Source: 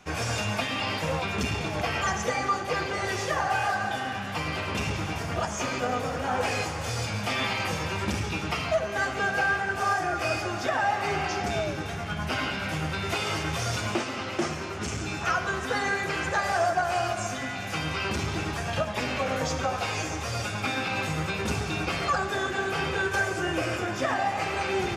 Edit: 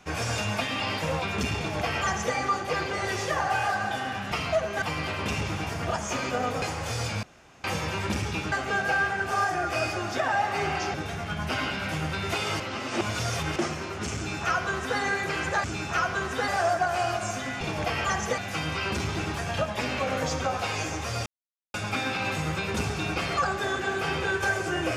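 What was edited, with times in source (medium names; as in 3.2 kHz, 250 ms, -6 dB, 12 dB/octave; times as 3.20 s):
1.58–2.35 s: copy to 17.57 s
6.11–6.60 s: delete
7.21–7.62 s: room tone
8.50–9.01 s: move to 4.31 s
11.43–11.74 s: delete
13.40–14.36 s: reverse
14.96–15.80 s: copy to 16.44 s
20.45 s: insert silence 0.48 s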